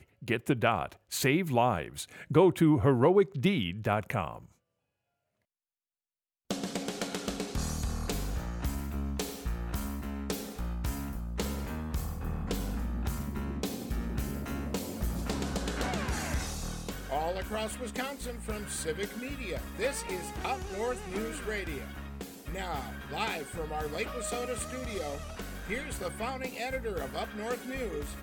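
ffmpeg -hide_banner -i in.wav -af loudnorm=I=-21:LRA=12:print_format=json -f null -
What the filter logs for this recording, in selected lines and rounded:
"input_i" : "-33.4",
"input_tp" : "-10.4",
"input_lra" : "8.8",
"input_thresh" : "-43.4",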